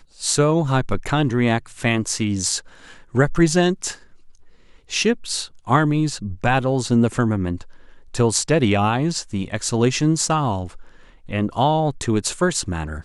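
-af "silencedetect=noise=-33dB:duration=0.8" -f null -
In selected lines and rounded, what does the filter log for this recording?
silence_start: 3.95
silence_end: 4.90 | silence_duration: 0.95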